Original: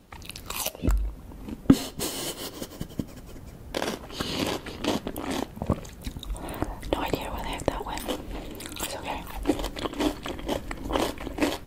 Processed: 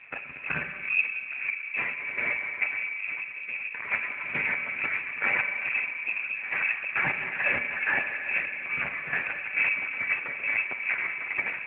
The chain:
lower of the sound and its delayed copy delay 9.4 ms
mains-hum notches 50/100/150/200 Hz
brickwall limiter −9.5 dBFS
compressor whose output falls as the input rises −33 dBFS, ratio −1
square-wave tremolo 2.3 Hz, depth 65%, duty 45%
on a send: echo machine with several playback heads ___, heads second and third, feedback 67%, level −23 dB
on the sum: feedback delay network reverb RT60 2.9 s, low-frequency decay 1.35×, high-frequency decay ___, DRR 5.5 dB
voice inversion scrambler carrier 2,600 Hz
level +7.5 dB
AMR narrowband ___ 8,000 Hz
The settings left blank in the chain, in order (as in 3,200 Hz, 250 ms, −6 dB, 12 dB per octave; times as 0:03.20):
60 ms, 0.65×, 12.2 kbit/s